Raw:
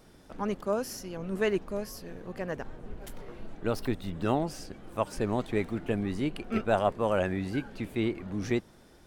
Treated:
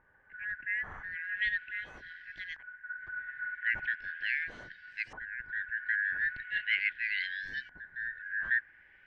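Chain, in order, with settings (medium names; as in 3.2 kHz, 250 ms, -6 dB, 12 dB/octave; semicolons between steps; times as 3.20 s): four frequency bands reordered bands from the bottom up 4123; LFO low-pass saw up 0.39 Hz 970–5900 Hz; RIAA curve playback; trim -6.5 dB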